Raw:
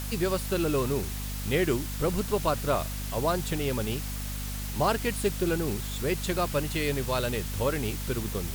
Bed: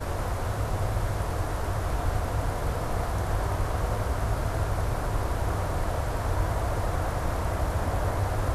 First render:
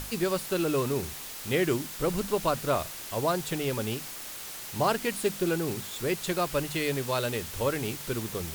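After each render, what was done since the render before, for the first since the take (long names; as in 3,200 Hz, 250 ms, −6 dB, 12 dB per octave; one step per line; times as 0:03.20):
mains-hum notches 50/100/150/200/250 Hz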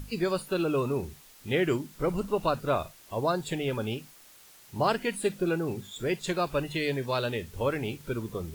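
noise reduction from a noise print 14 dB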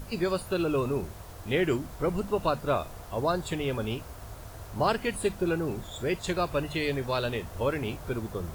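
mix in bed −16 dB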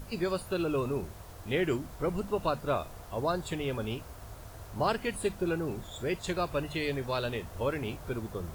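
level −3 dB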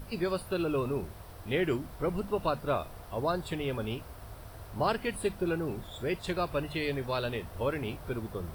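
parametric band 6,800 Hz −11 dB 0.32 octaves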